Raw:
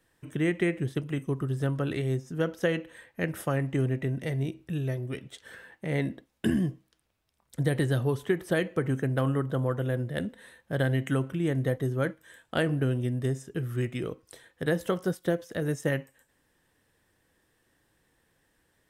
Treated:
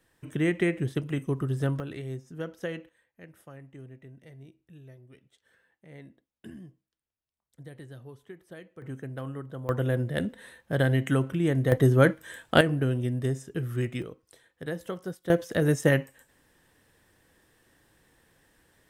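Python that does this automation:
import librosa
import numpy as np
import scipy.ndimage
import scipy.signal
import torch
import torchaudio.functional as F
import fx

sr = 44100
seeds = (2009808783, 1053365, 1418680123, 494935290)

y = fx.gain(x, sr, db=fx.steps((0.0, 1.0), (1.8, -7.5), (2.89, -19.0), (8.82, -10.0), (9.69, 2.5), (11.72, 9.0), (12.61, 0.5), (14.02, -7.0), (15.3, 6.0)))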